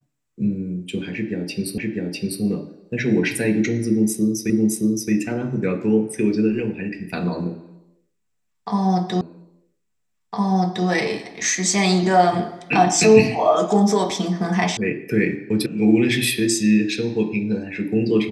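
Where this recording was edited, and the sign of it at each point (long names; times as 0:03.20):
0:01.78: the same again, the last 0.65 s
0:04.50: the same again, the last 0.62 s
0:09.21: the same again, the last 1.66 s
0:14.77: cut off before it has died away
0:15.66: cut off before it has died away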